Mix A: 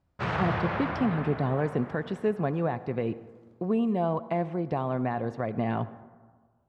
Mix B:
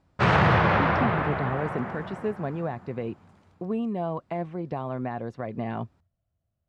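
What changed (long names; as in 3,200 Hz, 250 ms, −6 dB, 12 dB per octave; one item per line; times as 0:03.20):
background +10.5 dB
reverb: off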